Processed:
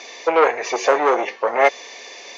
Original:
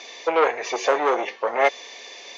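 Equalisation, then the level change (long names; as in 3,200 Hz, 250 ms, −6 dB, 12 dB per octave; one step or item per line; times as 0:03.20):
parametric band 3,400 Hz −4.5 dB 0.46 octaves
+4.0 dB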